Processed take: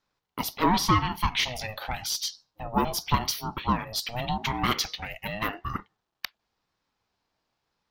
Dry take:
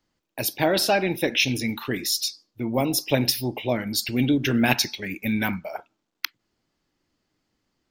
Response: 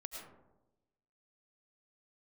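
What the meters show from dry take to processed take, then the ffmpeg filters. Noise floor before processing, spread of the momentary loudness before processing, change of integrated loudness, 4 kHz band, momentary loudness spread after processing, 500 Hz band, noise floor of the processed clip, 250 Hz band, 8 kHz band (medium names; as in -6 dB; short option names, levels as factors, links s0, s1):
-78 dBFS, 12 LU, -4.0 dB, -3.5 dB, 14 LU, -10.0 dB, -82 dBFS, -7.5 dB, -4.5 dB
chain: -filter_complex "[0:a]asplit=2[s0][s1];[s1]highpass=f=720:p=1,volume=5.01,asoftclip=type=tanh:threshold=0.708[s2];[s0][s2]amix=inputs=2:normalize=0,lowpass=f=4700:p=1,volume=0.501,equalizer=f=125:t=o:w=1:g=-5,equalizer=f=250:t=o:w=1:g=-6,equalizer=f=500:t=o:w=1:g=5,equalizer=f=2000:t=o:w=1:g=-6,equalizer=f=8000:t=o:w=1:g=-6,aeval=exprs='val(0)*sin(2*PI*430*n/s+430*0.25/0.88*sin(2*PI*0.88*n/s))':c=same,volume=0.668"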